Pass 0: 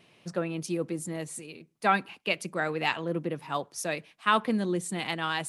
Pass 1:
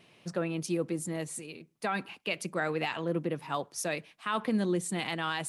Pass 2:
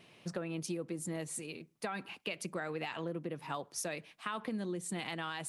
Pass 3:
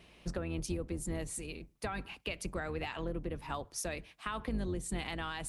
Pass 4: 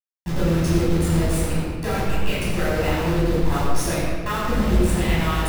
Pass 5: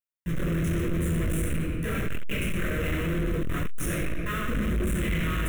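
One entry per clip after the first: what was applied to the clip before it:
brickwall limiter −20 dBFS, peak gain reduction 10 dB
downward compressor, threshold −35 dBFS, peak gain reduction 10 dB
sub-octave generator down 2 octaves, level +1 dB
hold until the input has moved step −36.5 dBFS; convolution reverb RT60 1.7 s, pre-delay 12 ms, DRR −9.5 dB; level +2.5 dB
hard clipping −23 dBFS, distortion −6 dB; phaser with its sweep stopped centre 2,000 Hz, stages 4

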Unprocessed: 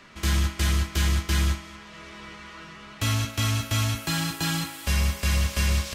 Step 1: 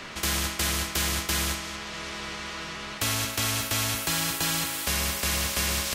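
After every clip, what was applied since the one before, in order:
every bin compressed towards the loudest bin 2 to 1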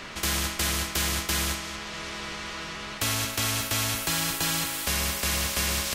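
background noise brown −56 dBFS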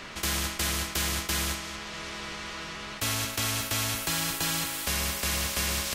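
level that may rise only so fast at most 550 dB per second
level −2 dB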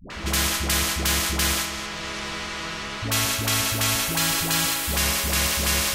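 all-pass dispersion highs, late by 103 ms, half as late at 460 Hz
level +6.5 dB

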